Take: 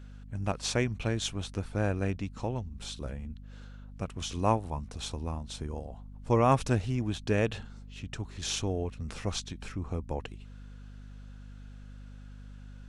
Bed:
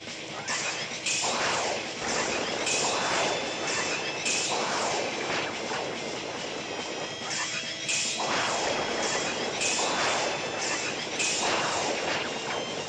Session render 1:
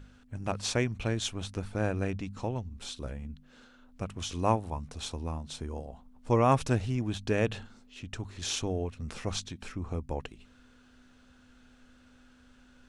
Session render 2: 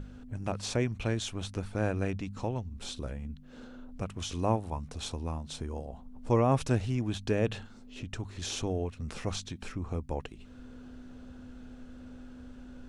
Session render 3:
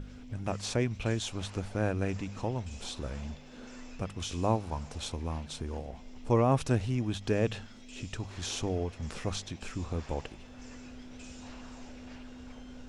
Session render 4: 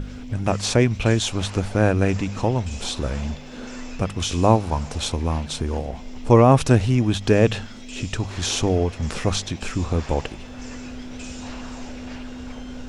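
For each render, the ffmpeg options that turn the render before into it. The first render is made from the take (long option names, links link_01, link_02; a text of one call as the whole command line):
ffmpeg -i in.wav -af "bandreject=frequency=50:width_type=h:width=4,bandreject=frequency=100:width_type=h:width=4,bandreject=frequency=150:width_type=h:width=4,bandreject=frequency=200:width_type=h:width=4" out.wav
ffmpeg -i in.wav -filter_complex "[0:a]acrossover=split=750[link_01][link_02];[link_01]acompressor=mode=upward:threshold=-34dB:ratio=2.5[link_03];[link_02]alimiter=level_in=3.5dB:limit=-24dB:level=0:latency=1:release=20,volume=-3.5dB[link_04];[link_03][link_04]amix=inputs=2:normalize=0" out.wav
ffmpeg -i in.wav -i bed.wav -filter_complex "[1:a]volume=-25.5dB[link_01];[0:a][link_01]amix=inputs=2:normalize=0" out.wav
ffmpeg -i in.wav -af "volume=12dB,alimiter=limit=-2dB:level=0:latency=1" out.wav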